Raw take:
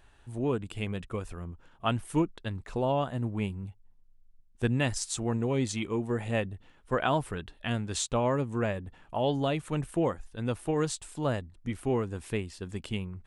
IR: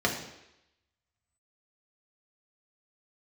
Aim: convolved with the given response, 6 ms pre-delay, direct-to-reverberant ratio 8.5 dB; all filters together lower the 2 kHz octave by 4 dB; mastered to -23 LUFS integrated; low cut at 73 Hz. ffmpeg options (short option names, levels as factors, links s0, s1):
-filter_complex "[0:a]highpass=73,equalizer=f=2000:t=o:g=-5.5,asplit=2[s0][s1];[1:a]atrim=start_sample=2205,adelay=6[s2];[s1][s2]afir=irnorm=-1:irlink=0,volume=0.1[s3];[s0][s3]amix=inputs=2:normalize=0,volume=2.66"